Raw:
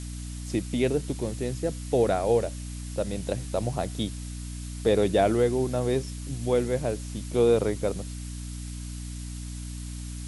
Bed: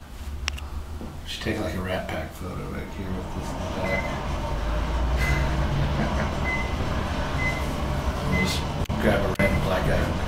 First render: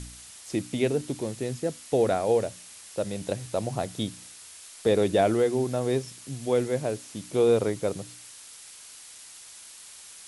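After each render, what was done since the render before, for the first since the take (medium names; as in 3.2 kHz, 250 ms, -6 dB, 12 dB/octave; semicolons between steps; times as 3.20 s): de-hum 60 Hz, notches 5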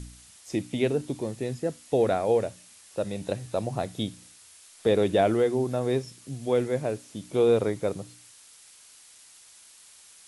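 noise print and reduce 6 dB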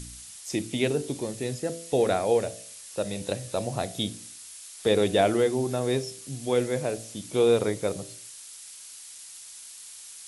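treble shelf 2.9 kHz +9.5 dB; de-hum 55.81 Hz, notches 14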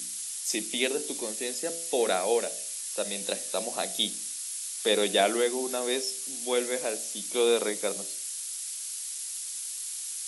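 elliptic high-pass 180 Hz, stop band 40 dB; tilt EQ +3 dB/octave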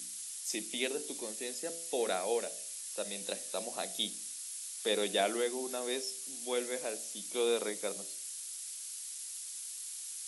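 trim -7 dB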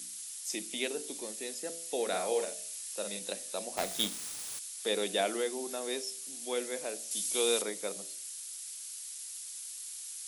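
2.08–3.19 s: doubling 49 ms -5 dB; 3.77–4.59 s: square wave that keeps the level; 7.11–7.62 s: treble shelf 2.7 kHz +9.5 dB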